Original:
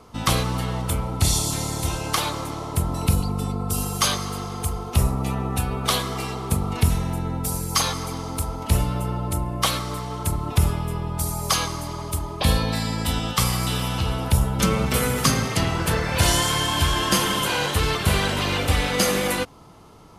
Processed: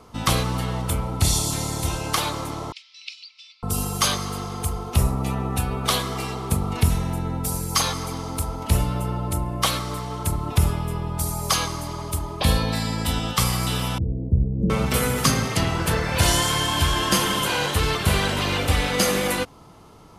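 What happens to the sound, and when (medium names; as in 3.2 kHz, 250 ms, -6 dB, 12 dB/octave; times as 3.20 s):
2.72–3.63 s: elliptic band-pass 2.3–5.3 kHz, stop band 70 dB
13.98–14.70 s: inverse Chebyshev low-pass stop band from 1.1 kHz, stop band 50 dB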